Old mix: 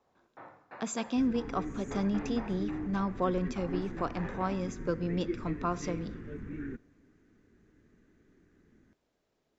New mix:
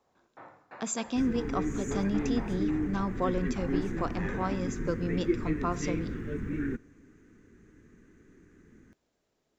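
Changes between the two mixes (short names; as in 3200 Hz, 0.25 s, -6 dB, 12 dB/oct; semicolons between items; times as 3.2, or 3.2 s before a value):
second sound +7.0 dB; master: remove air absorption 63 m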